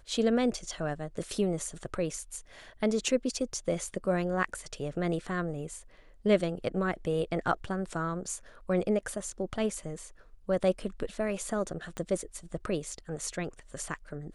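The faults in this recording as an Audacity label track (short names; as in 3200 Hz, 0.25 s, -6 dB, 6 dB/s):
11.970000	11.970000	pop -23 dBFS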